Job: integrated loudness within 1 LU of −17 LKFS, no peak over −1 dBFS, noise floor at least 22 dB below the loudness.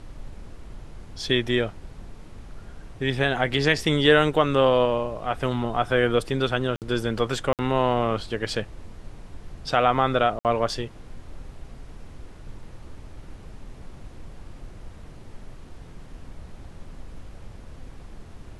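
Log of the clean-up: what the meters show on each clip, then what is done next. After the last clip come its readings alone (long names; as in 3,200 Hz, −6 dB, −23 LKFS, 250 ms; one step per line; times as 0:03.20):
number of dropouts 3; longest dropout 58 ms; background noise floor −44 dBFS; target noise floor −46 dBFS; integrated loudness −23.5 LKFS; sample peak −4.0 dBFS; target loudness −17.0 LKFS
→ repair the gap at 0:06.76/0:07.53/0:10.39, 58 ms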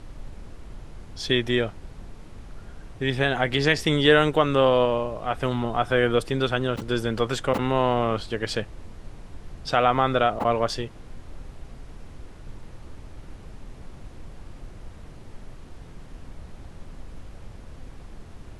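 number of dropouts 0; background noise floor −44 dBFS; target noise floor −46 dBFS
→ noise reduction from a noise print 6 dB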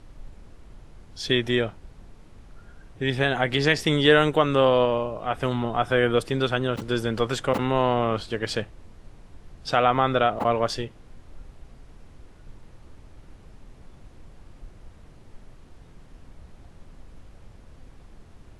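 background noise floor −50 dBFS; integrated loudness −23.5 LKFS; sample peak −4.0 dBFS; target loudness −17.0 LKFS
→ level +6.5 dB
brickwall limiter −1 dBFS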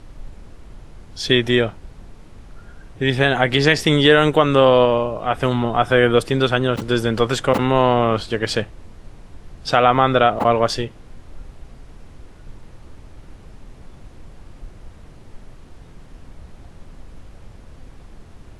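integrated loudness −17.0 LKFS; sample peak −1.0 dBFS; background noise floor −43 dBFS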